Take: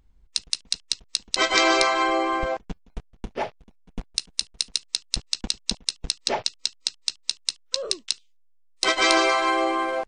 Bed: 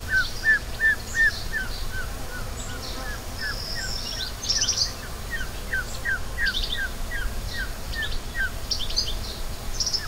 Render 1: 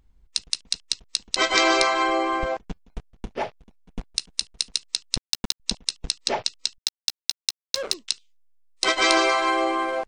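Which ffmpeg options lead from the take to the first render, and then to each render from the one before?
-filter_complex "[0:a]asettb=1/sr,asplit=3[a][b][c];[a]atrim=end=5.174[d];[b]atrim=start=5.17:end=5.6,asetpts=PTS-STARTPTS,afade=t=in:d=0.004:c=qsin,afade=t=out:st=0.426:d=0.004:c=qsin,acrusher=bits=3:mix=0:aa=0.5[e];[c]atrim=start=5.596[f];[d][e]acrossfade=d=0.004:c1=hsin:c2=qsin[g];[g][f]acrossfade=d=0.004:c1=qsin:c2=hsin,asettb=1/sr,asplit=3[h][i][j];[h]atrim=end=6.784[k];[i]atrim=start=6.78:end=7.94,asetpts=PTS-STARTPTS,afade=t=in:d=0.004:c=qsin,afade=t=out:st=1.156:d=0.004:c=qsin,acrusher=bits=4:mix=0:aa=0.5[l];[j]atrim=start=7.936[m];[k][l]acrossfade=d=0.004:c1=hsin:c2=qsin[n];[n][m]acrossfade=d=0.004:c1=qsin:c2=hsin"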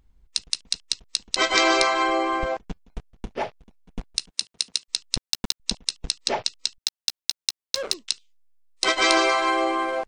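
-filter_complex "[0:a]asplit=3[a][b][c];[a]afade=t=out:st=4.29:d=0.02[d];[b]highpass=140,afade=t=in:st=4.29:d=0.02,afade=t=out:st=4.88:d=0.02[e];[c]afade=t=in:st=4.88:d=0.02[f];[d][e][f]amix=inputs=3:normalize=0"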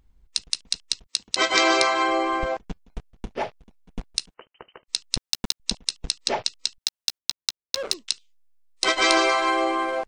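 -filter_complex "[0:a]asettb=1/sr,asplit=3[a][b][c];[a]atrim=end=1.064[d];[b]atrim=start=1.06:end=2.12,asetpts=PTS-STARTPTS,afade=t=in:d=0.004:c=qsin,afade=t=out:st=1.056:d=0.004:c=qsin,highpass=68[e];[c]atrim=start=2.116[f];[d][e]acrossfade=d=0.004:c1=hsin:c2=qsin[g];[g][f]acrossfade=d=0.004:c1=qsin:c2=hsin,asettb=1/sr,asplit=3[h][i][j];[h]atrim=end=4.344[k];[i]atrim=start=4.34:end=4.87,asetpts=PTS-STARTPTS,afade=t=in:d=0.004:c=qsin,afade=t=out:st=0.526:d=0.004:c=qsin,lowpass=f=2.7k:t=q:w=0.5098,lowpass=f=2.7k:t=q:w=0.6013,lowpass=f=2.7k:t=q:w=0.9,lowpass=f=2.7k:t=q:w=2.563,afreqshift=-3200[l];[j]atrim=start=4.866[m];[k][l]acrossfade=d=0.004:c1=hsin:c2=qsin[n];[n][m]acrossfade=d=0.004:c1=qsin:c2=hsin,asettb=1/sr,asplit=3[o][p][q];[o]atrim=end=7.184[r];[p]atrim=start=7.18:end=7.85,asetpts=PTS-STARTPTS,afade=t=in:d=0.004:c=qsin,afade=t=out:st=0.666:d=0.004:c=qsin,adynamicsmooth=sensitivity=5:basefreq=800[s];[q]atrim=start=7.846[t];[r][s]acrossfade=d=0.004:c1=hsin:c2=qsin[u];[u][t]acrossfade=d=0.004:c1=qsin:c2=hsin"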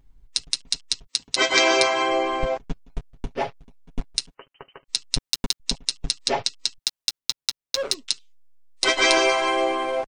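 -af "lowshelf=f=180:g=4.5,aecho=1:1:7.3:0.58"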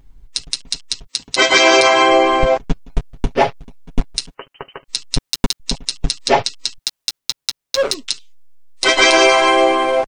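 -af "dynaudnorm=f=110:g=21:m=11.5dB,alimiter=level_in=9.5dB:limit=-1dB:release=50:level=0:latency=1"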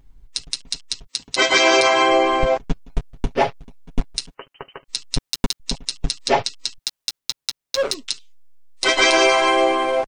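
-af "volume=-4dB"

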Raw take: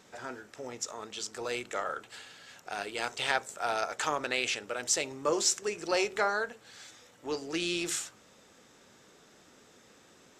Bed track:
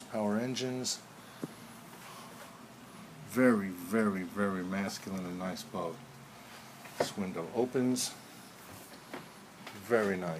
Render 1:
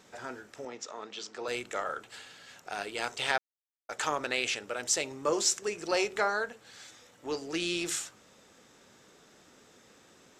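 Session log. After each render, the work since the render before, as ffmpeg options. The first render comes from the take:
-filter_complex "[0:a]asettb=1/sr,asplit=3[a][b][c];[a]atrim=end=0.654[d];[b]atrim=start=0.65:end=1.48,asetpts=PTS-STARTPTS,afade=t=in:d=0.004:c=qsin,afade=t=out:st=0.826:d=0.004:c=qsin,acrossover=split=170 5900:gain=0.158 1 0.0794[e][f][g];[e][f][g]amix=inputs=3:normalize=0[h];[c]atrim=start=1.476[i];[d][h]acrossfade=d=0.004:c1=hsin:c2=qsin[j];[j][i]acrossfade=d=0.004:c1=qsin:c2=hsin,asplit=3[k][l][m];[k]atrim=end=3.38,asetpts=PTS-STARTPTS,afade=t=out:st=3.376:d=0.004:c=hsin[n];[l]atrim=start=3.38:end=3.89,asetpts=PTS-STARTPTS,volume=0[o];[m]atrim=start=3.89,asetpts=PTS-STARTPTS,afade=t=in:d=0.004:c=hsin[p];[n][o][p]concat=n=3:v=0:a=1"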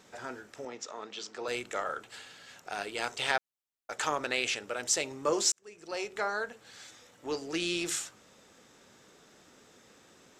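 -filter_complex "[0:a]asplit=2[a][b];[a]atrim=end=5.52,asetpts=PTS-STARTPTS,afade=t=out:st=5.516:d=0.004:c=hsin[c];[b]atrim=start=5.52,asetpts=PTS-STARTPTS,afade=t=in:d=1.12[d];[c][d]concat=n=2:v=0:a=1"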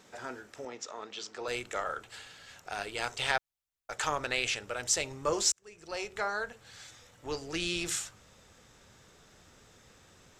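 -af "asubboost=boost=6.5:cutoff=100"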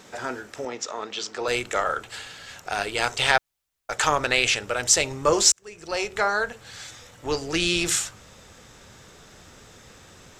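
-af "volume=10dB,alimiter=limit=-2dB:level=0:latency=1"

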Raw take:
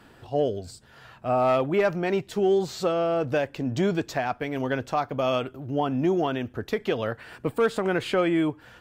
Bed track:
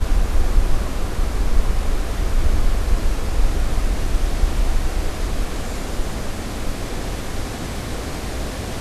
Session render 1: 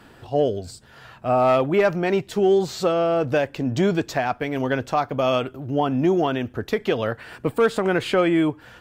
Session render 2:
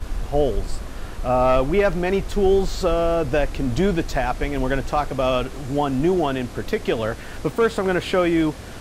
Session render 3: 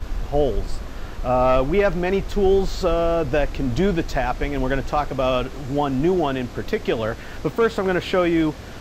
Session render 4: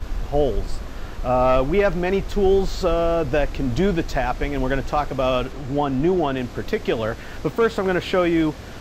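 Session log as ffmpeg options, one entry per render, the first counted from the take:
-af "volume=4dB"
-filter_complex "[1:a]volume=-9.5dB[a];[0:a][a]amix=inputs=2:normalize=0"
-af "equalizer=f=9.6k:w=2.5:g=-13"
-filter_complex "[0:a]asettb=1/sr,asplit=3[a][b][c];[a]atrim=end=5.524[d];[b]atrim=start=5.52:end=6.37,asetpts=PTS-STARTPTS,afade=t=in:d=0.004:c=qsin,afade=t=out:st=0.846:d=0.004:c=qsin,highshelf=f=5.4k:g=-6[e];[c]atrim=start=6.366[f];[d][e]acrossfade=d=0.004:c1=hsin:c2=qsin[g];[g][f]acrossfade=d=0.004:c1=qsin:c2=hsin"

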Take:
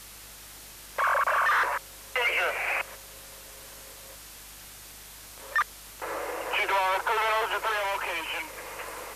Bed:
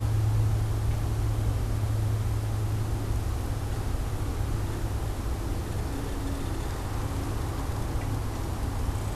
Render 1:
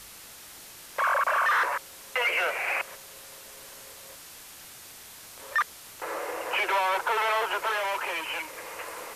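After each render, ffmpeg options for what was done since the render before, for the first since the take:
-af "bandreject=f=50:t=h:w=4,bandreject=f=100:t=h:w=4,bandreject=f=150:t=h:w=4,bandreject=f=200:t=h:w=4,bandreject=f=250:t=h:w=4,bandreject=f=300:t=h:w=4"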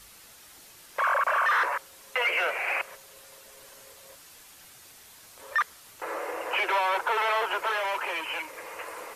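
-af "afftdn=nr=6:nf=-47"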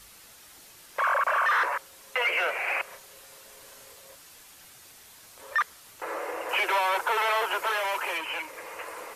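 -filter_complex "[0:a]asettb=1/sr,asplit=3[a][b][c];[a]atrim=end=2.834[d];[b]atrim=start=2.83:end=4.01,asetpts=PTS-STARTPTS,afade=t=in:d=0.004:c=qsin,afade=t=out:st=1.176:d=0.004:c=qsin,asplit=2[e][f];[f]adelay=34,volume=-7dB[g];[e][g]amix=inputs=2:normalize=0,atrim=end_sample=52038[h];[c]atrim=start=4.006[i];[d][h]acrossfade=d=0.004:c1=hsin:c2=qsin[j];[j][i]acrossfade=d=0.004:c1=qsin:c2=hsin,asettb=1/sr,asplit=3[k][l][m];[k]atrim=end=6.494[n];[l]atrim=start=6.49:end=8.18,asetpts=PTS-STARTPTS,afade=t=in:d=0.004:c=qsin,afade=t=out:st=1.686:d=0.004:c=qsin,highshelf=f=6k:g=8[o];[m]atrim=start=8.176[p];[n][o]acrossfade=d=0.004:c1=hsin:c2=qsin[q];[q][p]acrossfade=d=0.004:c1=qsin:c2=hsin"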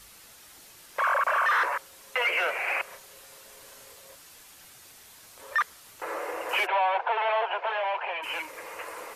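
-filter_complex "[0:a]asplit=3[a][b][c];[a]afade=t=out:st=6.65:d=0.02[d];[b]highpass=f=480:w=0.5412,highpass=f=480:w=1.3066,equalizer=f=730:t=q:w=4:g=8,equalizer=f=1.3k:t=q:w=4:g=-8,equalizer=f=2k:t=q:w=4:g=-5,lowpass=f=2.9k:w=0.5412,lowpass=f=2.9k:w=1.3066,afade=t=in:st=6.65:d=0.02,afade=t=out:st=8.22:d=0.02[e];[c]afade=t=in:st=8.22:d=0.02[f];[d][e][f]amix=inputs=3:normalize=0"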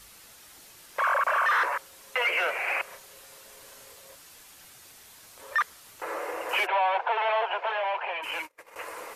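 -filter_complex "[0:a]asettb=1/sr,asplit=3[a][b][c];[a]atrim=end=6.854[d];[b]atrim=start=6.85:end=7.72,asetpts=PTS-STARTPTS,afade=t=in:d=0.004:c=qsin,afade=t=out:st=0.866:d=0.004:c=qsin,highshelf=f=8.4k:g=10.5[e];[c]atrim=start=7.716[f];[d][e]acrossfade=d=0.004:c1=hsin:c2=qsin[g];[g][f]acrossfade=d=0.004:c1=qsin:c2=hsin,asettb=1/sr,asplit=3[h][i][j];[h]atrim=end=8.314[k];[i]atrim=start=8.31:end=8.76,asetpts=PTS-STARTPTS,afade=t=in:d=0.004:c=qsin,afade=t=out:st=0.446:d=0.004:c=qsin,agate=range=-32dB:threshold=-40dB:ratio=16:release=100:detection=peak[l];[j]atrim=start=8.756[m];[k][l]acrossfade=d=0.004:c1=hsin:c2=qsin[n];[n][m]acrossfade=d=0.004:c1=qsin:c2=hsin"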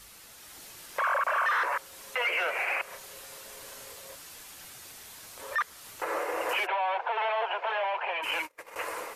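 -af "dynaudnorm=f=320:g=3:m=4dB,alimiter=limit=-21dB:level=0:latency=1:release=240"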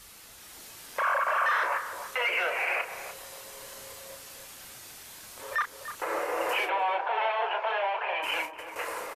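-filter_complex "[0:a]asplit=2[a][b];[b]adelay=33,volume=-8dB[c];[a][c]amix=inputs=2:normalize=0,asplit=2[d][e];[e]adelay=296,lowpass=f=920:p=1,volume=-6.5dB,asplit=2[f][g];[g]adelay=296,lowpass=f=920:p=1,volume=0.34,asplit=2[h][i];[i]adelay=296,lowpass=f=920:p=1,volume=0.34,asplit=2[j][k];[k]adelay=296,lowpass=f=920:p=1,volume=0.34[l];[d][f][h][j][l]amix=inputs=5:normalize=0"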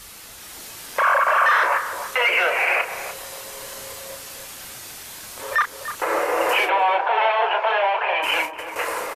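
-af "volume=9dB"

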